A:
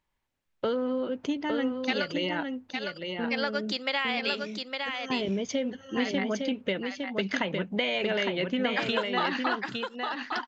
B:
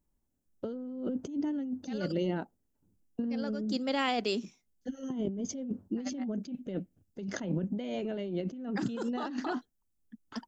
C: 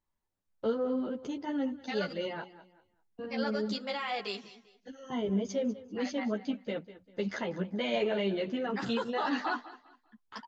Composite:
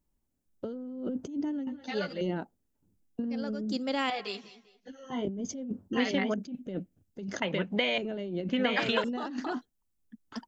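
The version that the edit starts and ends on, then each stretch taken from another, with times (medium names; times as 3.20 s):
B
1.67–2.21 s: from C
4.10–5.25 s: from C
5.93–6.34 s: from A
7.42–7.98 s: from A
8.49–9.04 s: from A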